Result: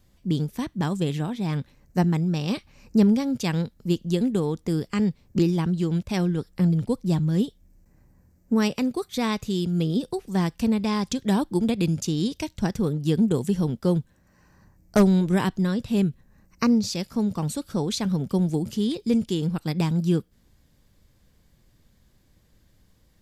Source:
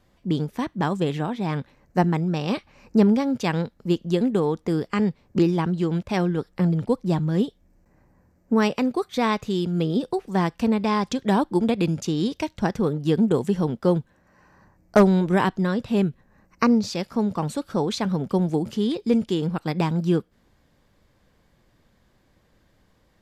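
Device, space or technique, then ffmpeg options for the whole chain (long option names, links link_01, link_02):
smiley-face EQ: -af "lowshelf=frequency=140:gain=5,equalizer=frequency=920:width_type=o:width=3:gain=-7,highshelf=frequency=5600:gain=8"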